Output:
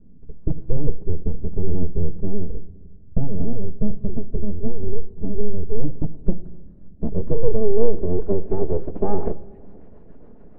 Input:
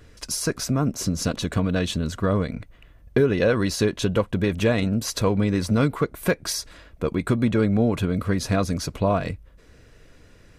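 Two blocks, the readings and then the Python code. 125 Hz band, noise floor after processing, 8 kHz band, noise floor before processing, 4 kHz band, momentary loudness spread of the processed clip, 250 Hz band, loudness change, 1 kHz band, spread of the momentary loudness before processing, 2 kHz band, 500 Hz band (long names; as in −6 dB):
−3.0 dB, −42 dBFS, below −40 dB, −52 dBFS, below −40 dB, 11 LU, −5.5 dB, −4.0 dB, −8.0 dB, 7 LU, below −25 dB, −1.5 dB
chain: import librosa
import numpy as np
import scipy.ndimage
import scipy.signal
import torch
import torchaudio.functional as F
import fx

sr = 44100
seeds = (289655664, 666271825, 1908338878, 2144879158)

y = fx.env_lowpass_down(x, sr, base_hz=420.0, full_db=-15.5)
y = scipy.signal.sosfilt(scipy.signal.butter(2, 4500.0, 'lowpass', fs=sr, output='sos'), y)
y = fx.peak_eq(y, sr, hz=240.0, db=10.0, octaves=0.77)
y = y + 0.95 * np.pad(y, (int(4.8 * sr / 1000.0), 0))[:len(y)]
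y = fx.rider(y, sr, range_db=10, speed_s=2.0)
y = fx.rotary_switch(y, sr, hz=0.9, then_hz=7.0, switch_at_s=2.3)
y = fx.echo_wet_highpass(y, sr, ms=289, feedback_pct=66, hz=2000.0, wet_db=-13)
y = np.abs(y)
y = fx.filter_sweep_lowpass(y, sr, from_hz=210.0, to_hz=720.0, start_s=6.11, end_s=9.88, q=0.88)
y = fx.room_shoebox(y, sr, seeds[0], volume_m3=1700.0, walls='mixed', distance_m=0.3)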